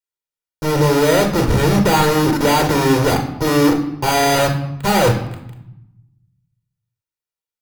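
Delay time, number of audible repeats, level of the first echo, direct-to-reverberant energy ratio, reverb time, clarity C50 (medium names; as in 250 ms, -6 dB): no echo, no echo, no echo, 4.0 dB, 0.85 s, 8.5 dB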